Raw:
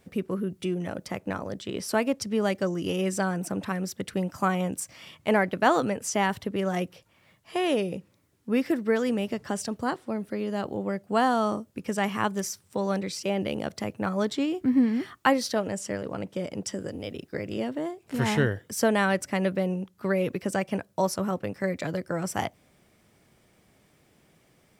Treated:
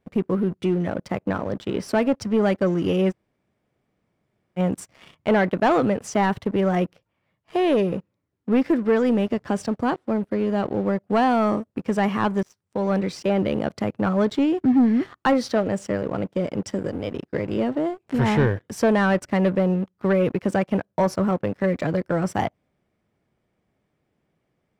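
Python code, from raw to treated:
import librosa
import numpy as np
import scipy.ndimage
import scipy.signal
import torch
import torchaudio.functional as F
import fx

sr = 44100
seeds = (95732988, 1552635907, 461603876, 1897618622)

y = fx.edit(x, sr, fx.room_tone_fill(start_s=3.11, length_s=1.47, crossfade_s=0.04),
    fx.fade_in_from(start_s=12.43, length_s=0.59, floor_db=-18.0), tone=tone)
y = fx.leveller(y, sr, passes=3)
y = fx.lowpass(y, sr, hz=1600.0, slope=6)
y = y * 10.0 ** (-3.5 / 20.0)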